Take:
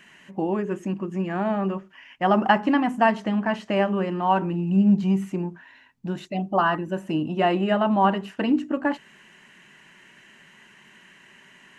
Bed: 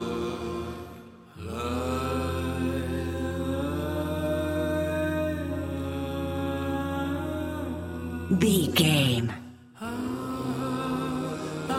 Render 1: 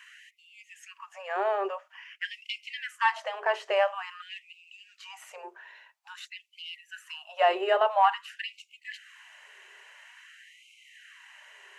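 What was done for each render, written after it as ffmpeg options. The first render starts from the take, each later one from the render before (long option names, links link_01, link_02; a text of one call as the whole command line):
ffmpeg -i in.wav -af "asoftclip=type=tanh:threshold=-6.5dB,afftfilt=real='re*gte(b*sr/1024,350*pow(2100/350,0.5+0.5*sin(2*PI*0.49*pts/sr)))':imag='im*gte(b*sr/1024,350*pow(2100/350,0.5+0.5*sin(2*PI*0.49*pts/sr)))':win_size=1024:overlap=0.75" out.wav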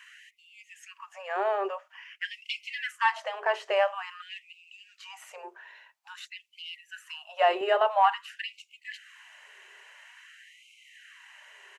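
ffmpeg -i in.wav -filter_complex "[0:a]asplit=3[link_01][link_02][link_03];[link_01]afade=type=out:start_time=2.46:duration=0.02[link_04];[link_02]aecho=1:1:5.9:0.97,afade=type=in:start_time=2.46:duration=0.02,afade=type=out:start_time=2.91:duration=0.02[link_05];[link_03]afade=type=in:start_time=2.91:duration=0.02[link_06];[link_04][link_05][link_06]amix=inputs=3:normalize=0,asettb=1/sr,asplit=3[link_07][link_08][link_09];[link_07]atrim=end=7.614[link_10];[link_08]atrim=start=7.61:end=8.06,asetpts=PTS-STARTPTS,afade=type=in:duration=0.004:curve=qsin,afade=type=out:start_time=0.446:duration=0.004:curve=qsin,highpass=230[link_11];[link_09]atrim=start=8.056[link_12];[link_10][link_11]acrossfade=duration=0.004:curve1=hsin:curve2=qsin[link_13];[link_13][link_12]acrossfade=duration=0.004:curve1=qsin:curve2=hsin" out.wav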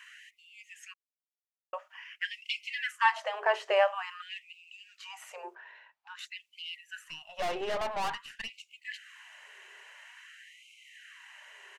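ffmpeg -i in.wav -filter_complex "[0:a]asettb=1/sr,asplit=3[link_01][link_02][link_03];[link_01]atrim=end=5.554[link_04];[link_02]atrim=start=5.55:end=6.19,asetpts=PTS-STARTPTS,afade=type=in:duration=0.004:curve=qsin,afade=type=out:start_time=0.636:duration=0.004:curve=qsin,adynamicsmooth=sensitivity=2.5:basefreq=3600[link_05];[link_03]atrim=start=6.186[link_06];[link_04][link_05]acrossfade=duration=0.004:curve1=hsin:curve2=qsin[link_07];[link_07][link_06]acrossfade=duration=0.004:curve1=qsin:curve2=hsin,asettb=1/sr,asplit=3[link_08][link_09][link_10];[link_08]atrim=end=7.044[link_11];[link_09]atrim=start=7.04:end=8.5,asetpts=PTS-STARTPTS,afade=type=in:duration=0.004:curve=qsin,afade=type=out:start_time=1.456:duration=0.004:curve=qsin,aeval=exprs='(tanh(31.6*val(0)+0.55)-tanh(0.55))/31.6':channel_layout=same[link_12];[link_10]atrim=start=8.496[link_13];[link_11][link_12]acrossfade=duration=0.004:curve1=hsin:curve2=qsin[link_14];[link_14][link_13]acrossfade=duration=0.004:curve1=qsin:curve2=hsin,asplit=3[link_15][link_16][link_17];[link_15]atrim=end=0.94,asetpts=PTS-STARTPTS,afade=type=out:start_time=0.936:duration=0.004:curve=hsin[link_18];[link_16]atrim=start=0.94:end=1.73,asetpts=PTS-STARTPTS,volume=0[link_19];[link_17]atrim=start=1.73,asetpts=PTS-STARTPTS,afade=type=in:duration=0.004:curve=hsin[link_20];[link_18][link_19][link_20]concat=n=3:v=0:a=1" out.wav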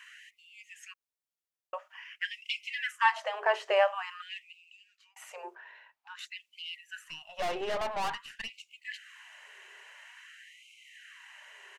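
ffmpeg -i in.wav -filter_complex "[0:a]asettb=1/sr,asplit=3[link_01][link_02][link_03];[link_01]atrim=end=2.264[link_04];[link_02]atrim=start=2.26:end=3.05,asetpts=PTS-STARTPTS,afade=type=in:duration=0.004:curve=qsin,afade=type=out:start_time=0.786:duration=0.004:curve=qsin,bandreject=frequency=4400:width=12[link_05];[link_03]atrim=start=3.046[link_06];[link_04][link_05]acrossfade=duration=0.004:curve1=hsin:curve2=qsin[link_07];[link_07][link_06]acrossfade=duration=0.004:curve1=qsin:curve2=hsin,asplit=2[link_08][link_09];[link_08]atrim=end=5.16,asetpts=PTS-STARTPTS,afade=type=out:start_time=4.35:duration=0.81[link_10];[link_09]atrim=start=5.16,asetpts=PTS-STARTPTS,afade=type=in:duration=0.004:curve=hsin[link_11];[link_10][link_11]concat=n=2:v=0:a=1" out.wav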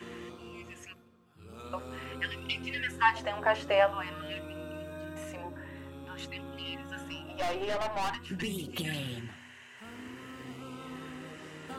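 ffmpeg -i in.wav -i bed.wav -filter_complex "[1:a]volume=-14.5dB[link_01];[0:a][link_01]amix=inputs=2:normalize=0" out.wav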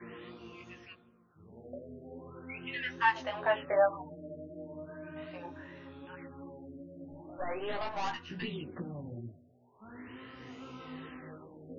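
ffmpeg -i in.wav -af "flanger=delay=16.5:depth=2.8:speed=2.6,afftfilt=real='re*lt(b*sr/1024,690*pow(7000/690,0.5+0.5*sin(2*PI*0.4*pts/sr)))':imag='im*lt(b*sr/1024,690*pow(7000/690,0.5+0.5*sin(2*PI*0.4*pts/sr)))':win_size=1024:overlap=0.75" out.wav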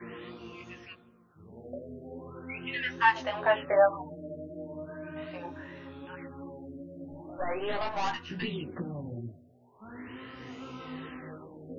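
ffmpeg -i in.wav -af "volume=4dB" out.wav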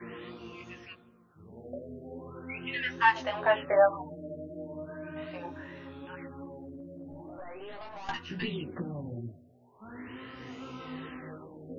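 ffmpeg -i in.wav -filter_complex "[0:a]asettb=1/sr,asplit=3[link_01][link_02][link_03];[link_01]atrim=end=6.454[link_04];[link_02]atrim=start=6.45:end=8.09,asetpts=PTS-STARTPTS,afade=type=in:duration=0.004:curve=qsin,afade=type=out:start_time=1.636:duration=0.004:curve=qsin,acompressor=threshold=-40dB:ratio=6:attack=3.2:release=140:knee=1:detection=peak[link_05];[link_03]atrim=start=8.086[link_06];[link_04][link_05]acrossfade=duration=0.004:curve1=hsin:curve2=qsin[link_07];[link_07][link_06]acrossfade=duration=0.004:curve1=qsin:curve2=hsin" out.wav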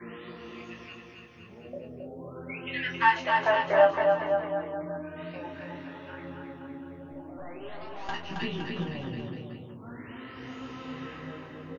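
ffmpeg -i in.wav -filter_complex "[0:a]asplit=2[link_01][link_02];[link_02]adelay=30,volume=-8dB[link_03];[link_01][link_03]amix=inputs=2:normalize=0,aecho=1:1:270|513|731.7|928.5|1106:0.631|0.398|0.251|0.158|0.1" out.wav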